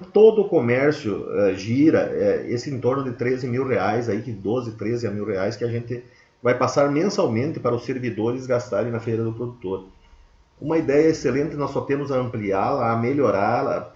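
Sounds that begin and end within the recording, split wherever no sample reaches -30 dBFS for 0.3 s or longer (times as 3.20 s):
6.45–9.79 s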